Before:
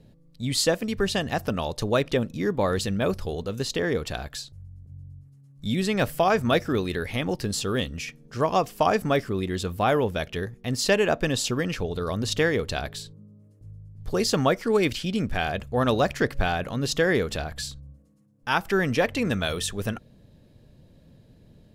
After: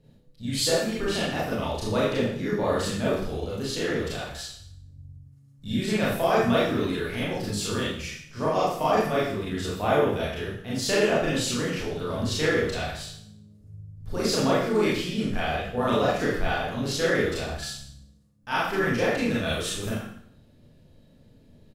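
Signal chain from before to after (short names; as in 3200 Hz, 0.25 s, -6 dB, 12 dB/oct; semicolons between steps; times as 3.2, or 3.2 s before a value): Schroeder reverb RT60 0.64 s, combs from 26 ms, DRR -7.5 dB; harmoniser -4 st -10 dB; gain -9 dB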